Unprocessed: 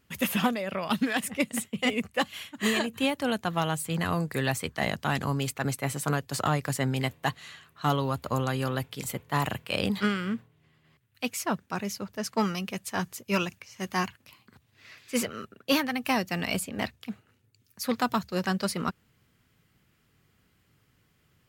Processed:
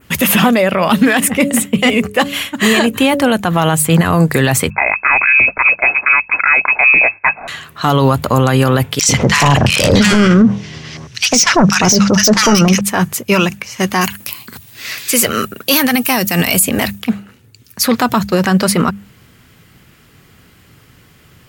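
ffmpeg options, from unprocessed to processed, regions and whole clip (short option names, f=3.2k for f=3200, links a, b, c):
-filter_complex "[0:a]asettb=1/sr,asplit=3[a][b][c];[a]atrim=end=0.704[d];[b]atrim=start=0.7:end=3.37,asetpts=PTS-STARTPTS,afade=t=in:d=0.004:c=qsin,afade=t=out:st=2.666:d=0.004:c=qsin,bandreject=f=141.5:t=h:w=4,bandreject=f=283:t=h:w=4,bandreject=f=424.5:t=h:w=4,bandreject=f=566:t=h:w=4,asoftclip=type=hard:threshold=-15.5dB[e];[c]atrim=start=3.366[f];[d][e]acrossfade=d=0.004:c1=hsin:c2=qsin[g];[g][f]acrossfade=d=0.004:c1=qsin:c2=hsin,asettb=1/sr,asplit=3[h][i][j];[h]atrim=end=4.704[k];[i]atrim=start=4.7:end=7.48,asetpts=PTS-STARTPTS,afade=t=in:d=0.004:c=qsin,afade=t=out:st=2.776:d=0.004:c=qsin,bandreject=f=850:w=5.5,agate=range=-8dB:threshold=-55dB:ratio=16:release=100:detection=peak,lowpass=f=2.3k:t=q:w=0.5098,lowpass=f=2.3k:t=q:w=0.6013,lowpass=f=2.3k:t=q:w=0.9,lowpass=f=2.3k:t=q:w=2.563,afreqshift=-2700[l];[j]atrim=start=7.476[m];[k][l]acrossfade=d=0.004:c1=hsin:c2=qsin[n];[n][m]acrossfade=d=0.004:c1=qsin:c2=hsin,asettb=1/sr,asplit=3[o][p][q];[o]atrim=end=8.994[r];[p]atrim=start=8.99:end=12.81,asetpts=PTS-STARTPTS,afade=t=in:d=0.004:c=qsin,afade=t=out:st=3.816:d=0.004:c=qsin,lowpass=f=5.8k:t=q:w=7,aeval=exprs='0.282*sin(PI/2*2.82*val(0)/0.282)':c=same,acrossover=split=1300[s][t];[s]adelay=100[u];[u][t]amix=inputs=2:normalize=0,atrim=end_sample=168462[v];[q]atrim=start=12.806[w];[r][v]acrossfade=d=0.004:c1=hsin:c2=qsin[x];[x][w]acrossfade=d=0.004:c1=qsin:c2=hsin,asettb=1/sr,asplit=3[y][z][aa];[y]atrim=end=14.014[ab];[z]atrim=start=14.01:end=17.01,asetpts=PTS-STARTPTS,afade=t=in:d=0.004:c=qsin,afade=t=out:st=2.996:d=0.004:c=qsin,aemphasis=mode=production:type=75kf,asoftclip=type=hard:threshold=-10dB[ac];[aa]atrim=start=17.006[ad];[ab][ac]acrossfade=d=0.004:c1=hsin:c2=qsin[ae];[ae][ad]acrossfade=d=0.004:c1=qsin:c2=hsin,bandreject=f=50:t=h:w=6,bandreject=f=100:t=h:w=6,bandreject=f=150:t=h:w=6,bandreject=f=200:t=h:w=6,adynamicequalizer=threshold=0.00316:dfrequency=4700:dqfactor=1.2:tfrequency=4700:tqfactor=1.2:attack=5:release=100:ratio=0.375:range=3:mode=cutabove:tftype=bell,alimiter=level_in=22.5dB:limit=-1dB:release=50:level=0:latency=1,volume=-1dB"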